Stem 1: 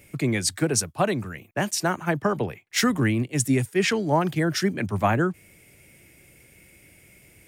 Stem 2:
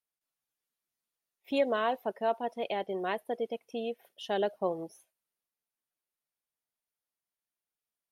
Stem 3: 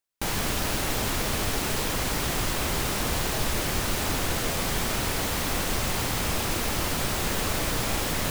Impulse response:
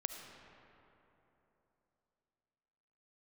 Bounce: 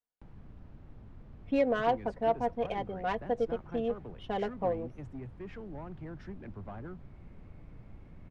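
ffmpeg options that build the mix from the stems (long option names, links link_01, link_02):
-filter_complex "[0:a]acompressor=threshold=-34dB:ratio=2.5,asoftclip=type=tanh:threshold=-29dB,adelay=1650,volume=-8dB[link_01];[1:a]highshelf=frequency=4400:gain=5,aecho=1:1:4.1:0.79,volume=-1dB[link_02];[2:a]acrossover=split=230[link_03][link_04];[link_04]acompressor=threshold=-41dB:ratio=6[link_05];[link_03][link_05]amix=inputs=2:normalize=0,volume=-18dB[link_06];[link_01][link_02][link_06]amix=inputs=3:normalize=0,adynamicsmooth=sensitivity=1:basefreq=1500"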